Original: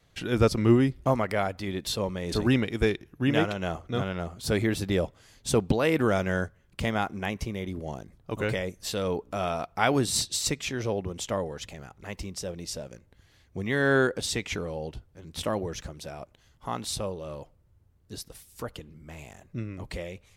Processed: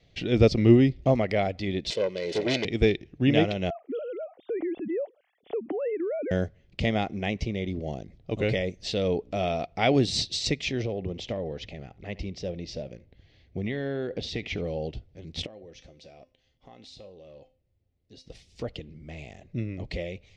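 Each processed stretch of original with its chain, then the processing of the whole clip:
1.9–2.65 self-modulated delay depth 0.6 ms + HPF 270 Hz + comb 2 ms, depth 56%
3.7–6.31 sine-wave speech + LPF 1300 Hz + compressor, threshold -30 dBFS
10.82–14.64 compressor, threshold -28 dBFS + air absorption 110 m + echo 72 ms -21 dB
15.46–18.26 tone controls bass -5 dB, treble -1 dB + compressor 3:1, threshold -38 dBFS + resonator 260 Hz, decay 0.34 s, mix 70%
whole clip: LPF 5300 Hz 24 dB/oct; band shelf 1200 Hz -12.5 dB 1.1 oct; gain +3 dB

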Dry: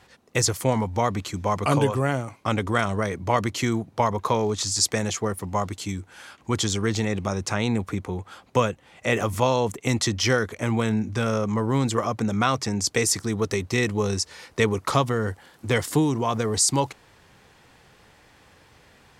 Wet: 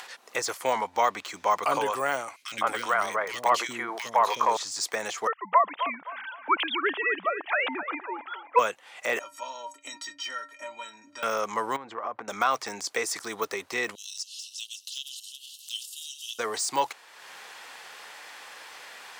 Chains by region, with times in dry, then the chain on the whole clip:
0.72–1.63 median filter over 3 samples + high shelf 8200 Hz -6 dB
2.36–4.57 overloaded stage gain 12 dB + three bands offset in time highs, lows, mids 60/160 ms, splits 350/2000 Hz + sustainer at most 60 dB/s
5.27–8.59 sine-wave speech + band-limited delay 0.26 s, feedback 34%, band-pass 950 Hz, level -10 dB
9.19–11.23 LPF 8200 Hz + metallic resonator 280 Hz, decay 0.26 s, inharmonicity 0.03 + mismatched tape noise reduction decoder only
11.76–12.28 LPF 1300 Hz + compressor 10:1, threshold -27 dBFS
13.95–16.39 regenerating reverse delay 0.181 s, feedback 44%, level -12 dB + Chebyshev high-pass 2700 Hz, order 10
whole clip: de-esser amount 100%; HPF 810 Hz 12 dB/oct; upward compressor, threshold -41 dBFS; gain +5 dB

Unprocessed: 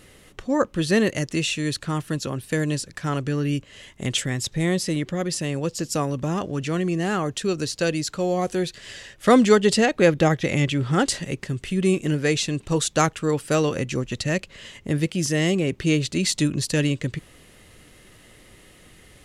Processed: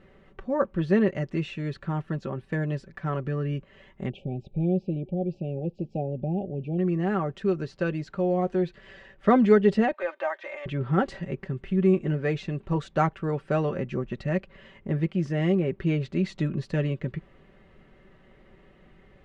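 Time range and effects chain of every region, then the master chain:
4.09–6.79 brick-wall FIR band-stop 880–2300 Hz + tape spacing loss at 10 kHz 32 dB
9.93–10.66 HPF 660 Hz 24 dB/oct + de-esser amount 85% + comb 3.3 ms, depth 71%
whole clip: LPF 1600 Hz 12 dB/oct; comb 5.2 ms, depth 54%; gain -4 dB

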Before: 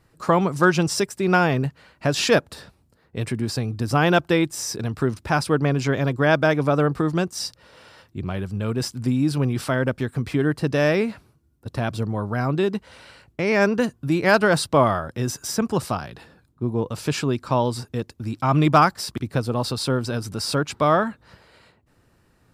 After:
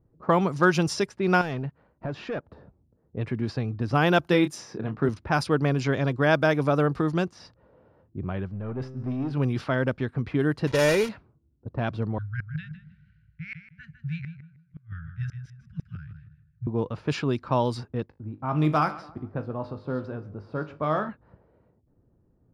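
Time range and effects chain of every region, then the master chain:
1.41–2.48 sample leveller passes 2 + compressor, threshold -26 dBFS
4.27–5.09 resonant low shelf 110 Hz -9.5 dB, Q 1.5 + doubler 28 ms -9 dB
8.49–9.33 sample leveller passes 2 + resonator 130 Hz, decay 1.6 s, mix 70%
10.67–11.09 block floating point 3-bit + LPF 10000 Hz + comb 2.1 ms, depth 48%
12.18–16.67 Chebyshev band-stop 160–1500 Hz, order 5 + flipped gate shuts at -18 dBFS, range -34 dB + feedback echo 0.156 s, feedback 31%, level -7 dB
18.06–21.09 high shelf 2900 Hz -4 dB + resonator 51 Hz, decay 0.32 s, mix 70% + feedback echo 0.139 s, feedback 45%, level -18 dB
whole clip: notch 7900 Hz, Q 6; low-pass opened by the level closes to 470 Hz, open at -16 dBFS; gain -3 dB

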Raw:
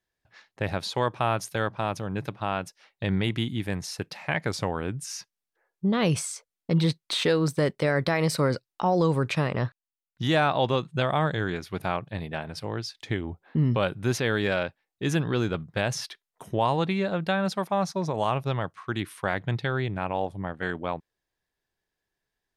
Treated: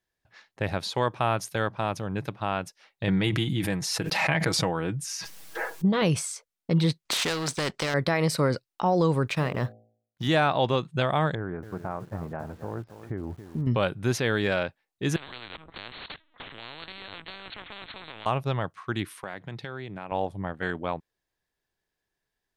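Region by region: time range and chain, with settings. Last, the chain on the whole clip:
3.07–6.02 comb 6.2 ms, depth 57% + backwards sustainer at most 25 dB/s
7.05–7.94 LPF 7700 Hz 24 dB/oct + sample leveller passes 1 + spectral compressor 2:1
9.27–10.28 G.711 law mismatch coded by A + de-hum 55.76 Hz, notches 14
11.35–13.67 LPF 1400 Hz 24 dB/oct + compressor 2.5:1, threshold -29 dBFS + lo-fi delay 0.277 s, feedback 35%, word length 8-bit, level -10.5 dB
15.16–18.26 compressor 3:1, threshold -38 dBFS + LPC vocoder at 8 kHz pitch kept + spectral compressor 10:1
19.11–20.12 HPF 140 Hz + compressor 2.5:1, threshold -36 dBFS
whole clip: dry

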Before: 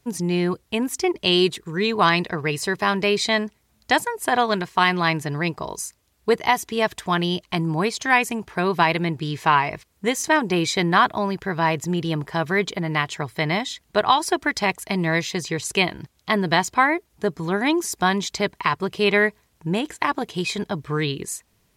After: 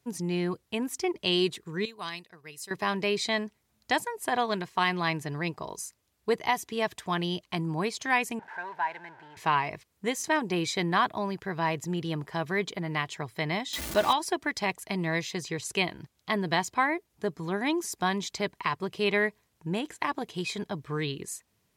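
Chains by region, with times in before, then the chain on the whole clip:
1.85–2.71 pre-emphasis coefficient 0.8 + upward expander, over -43 dBFS
8.39–9.37 zero-crossing step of -22.5 dBFS + double band-pass 1200 Hz, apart 0.74 oct + mismatched tape noise reduction decoder only
13.73–14.13 zero-crossing step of -22 dBFS + comb 3.4 ms, depth 48%
whole clip: HPF 71 Hz; dynamic EQ 1400 Hz, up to -4 dB, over -41 dBFS, Q 6.2; gain -7.5 dB

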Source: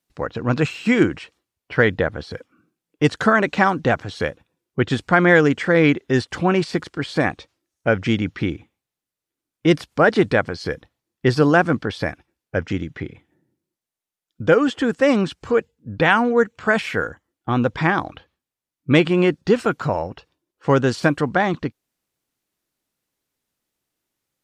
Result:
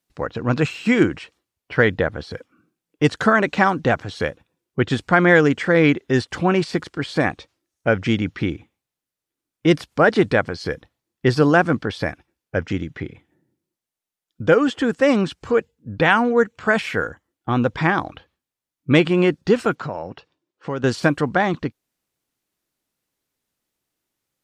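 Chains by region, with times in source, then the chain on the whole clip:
19.75–20.84 compressor 2.5:1, threshold -26 dBFS + BPF 110–6000 Hz
whole clip: dry

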